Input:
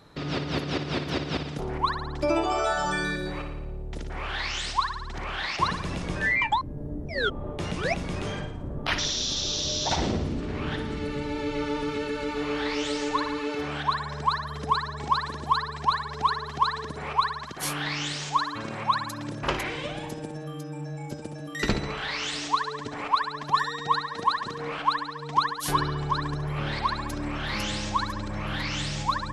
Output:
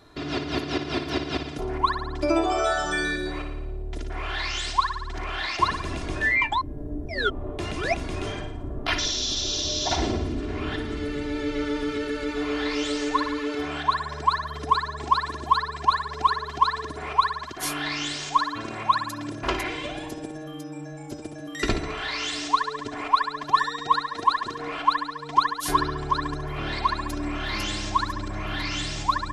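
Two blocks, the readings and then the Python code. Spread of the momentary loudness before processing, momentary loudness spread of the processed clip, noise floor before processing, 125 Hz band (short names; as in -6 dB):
8 LU, 9 LU, -37 dBFS, -2.0 dB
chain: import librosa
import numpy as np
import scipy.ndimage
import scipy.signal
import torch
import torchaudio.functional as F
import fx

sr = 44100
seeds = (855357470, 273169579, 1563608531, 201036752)

y = x + 0.62 * np.pad(x, (int(2.9 * sr / 1000.0), 0))[:len(x)]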